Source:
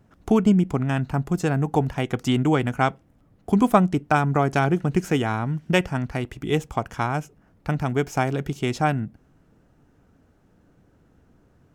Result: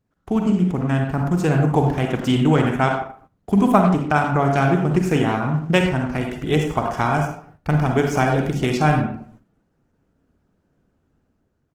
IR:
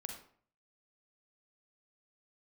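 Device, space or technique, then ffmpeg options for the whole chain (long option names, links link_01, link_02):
speakerphone in a meeting room: -filter_complex "[1:a]atrim=start_sample=2205[link_01];[0:a][link_01]afir=irnorm=-1:irlink=0,asplit=2[link_02][link_03];[link_03]adelay=100,highpass=300,lowpass=3400,asoftclip=type=hard:threshold=-15.5dB,volume=-11dB[link_04];[link_02][link_04]amix=inputs=2:normalize=0,dynaudnorm=framelen=330:gausssize=5:maxgain=8dB,agate=range=-12dB:threshold=-46dB:ratio=16:detection=peak" -ar 48000 -c:a libopus -b:a 16k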